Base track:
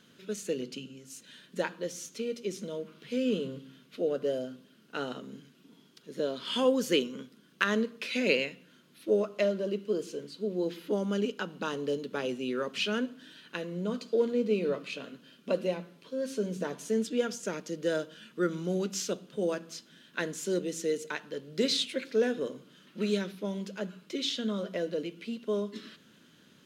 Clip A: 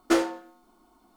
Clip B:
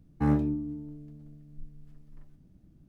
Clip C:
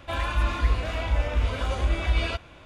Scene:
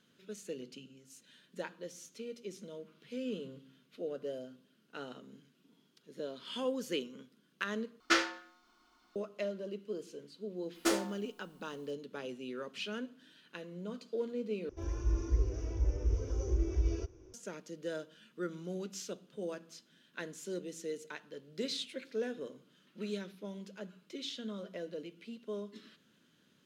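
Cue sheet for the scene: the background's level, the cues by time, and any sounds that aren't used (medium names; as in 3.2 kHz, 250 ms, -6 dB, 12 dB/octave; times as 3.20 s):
base track -9.5 dB
8.00 s: replace with A -12 dB + high-order bell 2.8 kHz +15 dB 2.7 oct
10.75 s: add A -9.5 dB + treble shelf 3.2 kHz +10.5 dB
14.69 s: replace with C -7 dB + FFT filter 120 Hz 0 dB, 180 Hz -17 dB, 270 Hz -2 dB, 390 Hz +12 dB, 610 Hz -14 dB, 1.5 kHz -18 dB, 4.1 kHz -23 dB, 5.9 kHz +10 dB, 8.5 kHz -30 dB, 12 kHz -14 dB
not used: B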